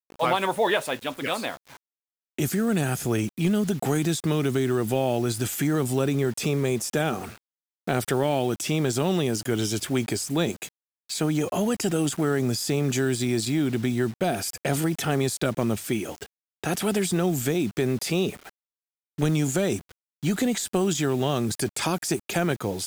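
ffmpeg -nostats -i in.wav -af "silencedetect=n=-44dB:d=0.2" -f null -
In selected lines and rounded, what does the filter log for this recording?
silence_start: 1.77
silence_end: 2.38 | silence_duration: 0.61
silence_start: 7.38
silence_end: 7.87 | silence_duration: 0.50
silence_start: 10.69
silence_end: 11.09 | silence_duration: 0.41
silence_start: 16.26
silence_end: 16.64 | silence_duration: 0.37
silence_start: 18.49
silence_end: 19.18 | silence_duration: 0.69
silence_start: 19.92
silence_end: 20.23 | silence_duration: 0.31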